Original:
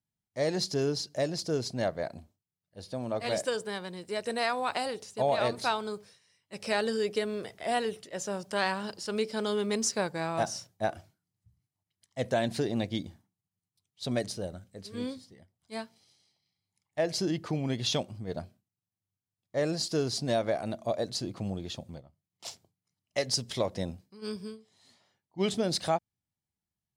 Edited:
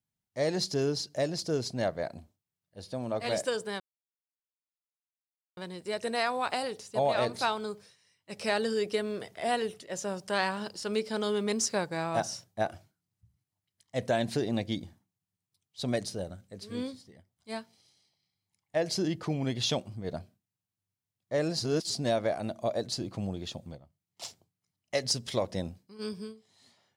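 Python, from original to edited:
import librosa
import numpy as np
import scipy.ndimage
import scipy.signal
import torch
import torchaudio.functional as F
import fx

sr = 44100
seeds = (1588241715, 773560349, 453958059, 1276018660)

y = fx.edit(x, sr, fx.insert_silence(at_s=3.8, length_s=1.77),
    fx.reverse_span(start_s=19.83, length_s=0.3), tone=tone)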